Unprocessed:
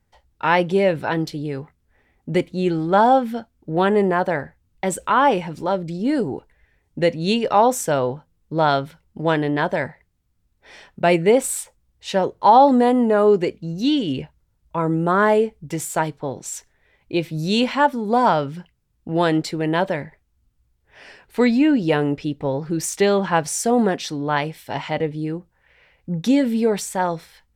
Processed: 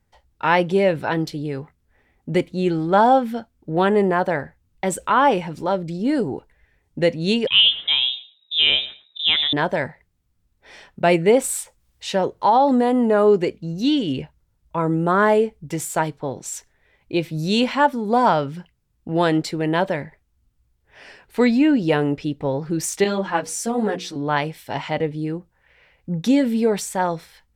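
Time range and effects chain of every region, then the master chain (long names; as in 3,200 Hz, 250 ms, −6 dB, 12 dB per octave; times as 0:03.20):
0:07.47–0:09.53: repeating echo 110 ms, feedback 15%, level −16.5 dB + voice inversion scrambler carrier 3,800 Hz
0:11.55–0:13.07: downward compressor 2 to 1, threshold −14 dBFS + one half of a high-frequency compander encoder only
0:23.04–0:24.16: mains-hum notches 60/120/180/240/300/360/420/480 Hz + string-ensemble chorus
whole clip: no processing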